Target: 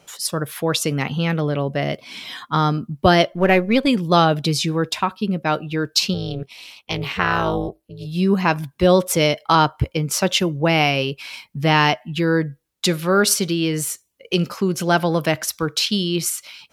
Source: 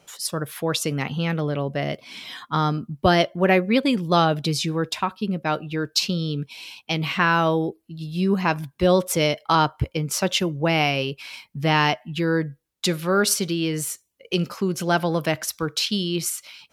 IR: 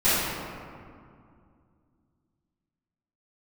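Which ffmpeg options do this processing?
-filter_complex "[0:a]asettb=1/sr,asplit=3[link_01][link_02][link_03];[link_01]atrim=end=3.324[link_04];[link_02]atrim=start=3.32:end=3.87,asetpts=PTS-STARTPTS,afade=type=in:duration=0.004:curve=qsin,afade=type=out:start_time=0.546:duration=0.004:curve=qsin,aeval=exprs='if(lt(val(0),0),0.708*val(0),val(0))':channel_layout=same[link_05];[link_03]atrim=start=3.866[link_06];[link_04][link_05]acrossfade=duration=0.004:curve1=hsin:curve2=qsin[link_07];[link_07][link_06]acrossfade=duration=0.004:curve1=qsin:curve2=hsin,asplit=3[link_08][link_09][link_10];[link_08]afade=type=out:start_time=6.13:duration=0.02[link_11];[link_09]tremolo=f=270:d=0.947,afade=type=in:start_time=6.13:duration=0.02,afade=type=out:start_time=8.05:duration=0.02[link_12];[link_10]afade=type=in:start_time=8.05:duration=0.02[link_13];[link_11][link_12][link_13]amix=inputs=3:normalize=0,volume=3.5dB"

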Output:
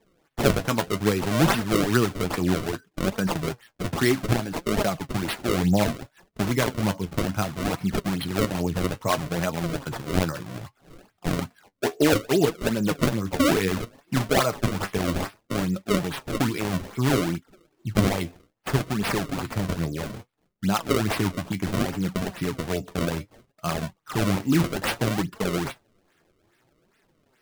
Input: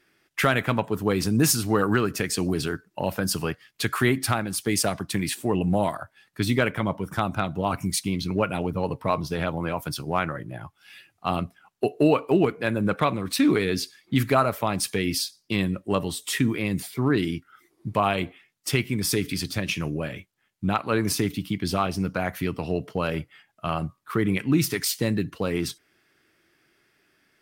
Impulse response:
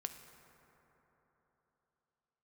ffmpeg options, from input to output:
-af "acrusher=samples=30:mix=1:aa=0.000001:lfo=1:lforange=48:lforate=2.4,flanger=delay=4.3:depth=8:regen=44:speed=0.63:shape=triangular,volume=4dB"

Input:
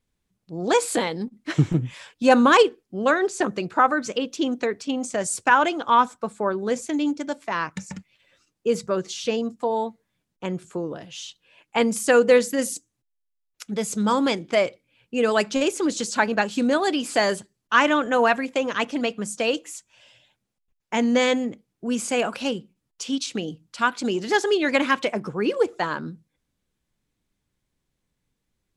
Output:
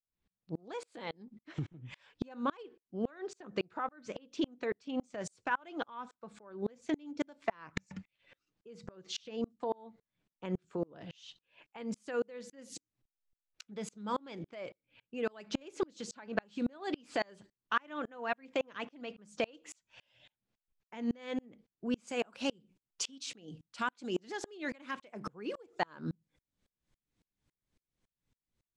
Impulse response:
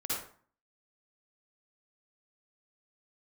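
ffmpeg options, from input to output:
-af "acompressor=threshold=-30dB:ratio=6,asetnsamples=nb_out_samples=441:pad=0,asendcmd='22.07 lowpass f 8600',lowpass=4400,dynaudnorm=framelen=290:gausssize=9:maxgain=4dB,aeval=exprs='val(0)*pow(10,-35*if(lt(mod(-3.6*n/s,1),2*abs(-3.6)/1000),1-mod(-3.6*n/s,1)/(2*abs(-3.6)/1000),(mod(-3.6*n/s,1)-2*abs(-3.6)/1000)/(1-2*abs(-3.6)/1000))/20)':channel_layout=same"

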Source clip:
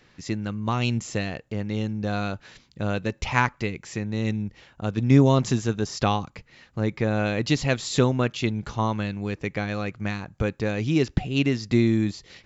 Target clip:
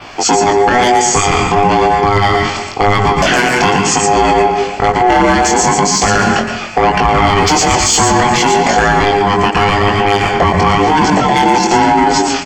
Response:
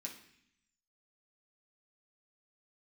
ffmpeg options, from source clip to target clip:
-filter_complex "[0:a]aeval=exprs='val(0)*sin(2*PI*610*n/s)':channel_layout=same,asplit=2[link_01][link_02];[link_02]acompressor=threshold=-32dB:ratio=6,volume=0dB[link_03];[link_01][link_03]amix=inputs=2:normalize=0,asoftclip=type=tanh:threshold=-20dB,asplit=2[link_04][link_05];[link_05]adelay=256.6,volume=-15dB,highshelf=frequency=4000:gain=-5.77[link_06];[link_04][link_06]amix=inputs=2:normalize=0,asplit=2[link_07][link_08];[1:a]atrim=start_sample=2205,adelay=115[link_09];[link_08][link_09]afir=irnorm=-1:irlink=0,volume=-1.5dB[link_10];[link_07][link_10]amix=inputs=2:normalize=0,flanger=delay=19:depth=3.9:speed=1,equalizer=frequency=490:width_type=o:width=0.33:gain=-9,bandreject=frequency=3800:width=6.3,adynamicequalizer=threshold=0.00251:dfrequency=6800:dqfactor=3.3:tfrequency=6800:tqfactor=3.3:attack=5:release=100:ratio=0.375:range=3:mode=boostabove:tftype=bell,alimiter=level_in=27.5dB:limit=-1dB:release=50:level=0:latency=1,volume=-1dB"

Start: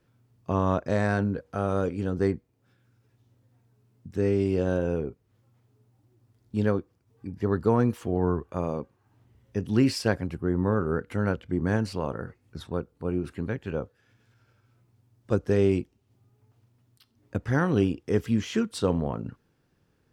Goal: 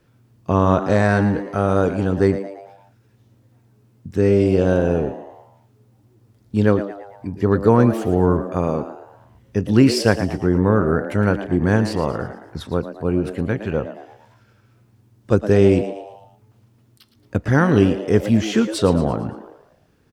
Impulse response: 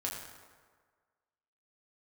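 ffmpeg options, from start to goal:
-filter_complex "[0:a]asplit=6[link_01][link_02][link_03][link_04][link_05][link_06];[link_02]adelay=113,afreqshift=100,volume=-12dB[link_07];[link_03]adelay=226,afreqshift=200,volume=-18.7dB[link_08];[link_04]adelay=339,afreqshift=300,volume=-25.5dB[link_09];[link_05]adelay=452,afreqshift=400,volume=-32.2dB[link_10];[link_06]adelay=565,afreqshift=500,volume=-39dB[link_11];[link_01][link_07][link_08][link_09][link_10][link_11]amix=inputs=6:normalize=0,volume=8.5dB"

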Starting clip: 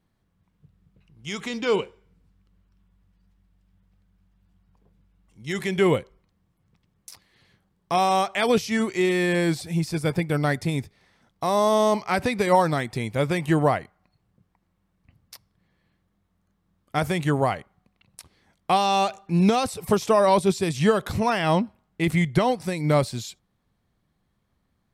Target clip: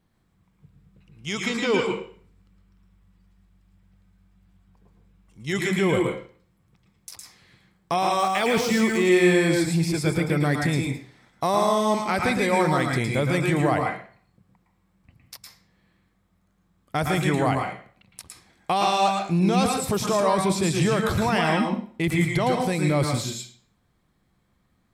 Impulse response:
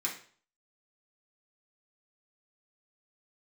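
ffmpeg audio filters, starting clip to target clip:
-filter_complex "[0:a]alimiter=limit=-17dB:level=0:latency=1:release=25,asettb=1/sr,asplit=3[link_01][link_02][link_03];[link_01]atrim=end=8.194[link_04];[link_02]atrim=start=8.19:end=8.97,asetpts=PTS-STARTPTS,afade=type=in:duration=0.004:curve=qsin,afade=type=out:start_time=0.776:duration=0.004:curve=qsin,aeval=exprs='val(0)*gte(abs(val(0)),0.0119)':channel_layout=same[link_05];[link_03]atrim=start=8.966[link_06];[link_04][link_05]acrossfade=duration=0.004:curve1=hsin:curve2=qsin[link_07];[link_07][link_06]acrossfade=duration=0.004:curve1=qsin:curve2=hsin,asplit=2[link_08][link_09];[1:a]atrim=start_sample=2205,adelay=110[link_10];[link_09][link_10]afir=irnorm=-1:irlink=0,volume=-4.5dB[link_11];[link_08][link_11]amix=inputs=2:normalize=0,volume=2.5dB"

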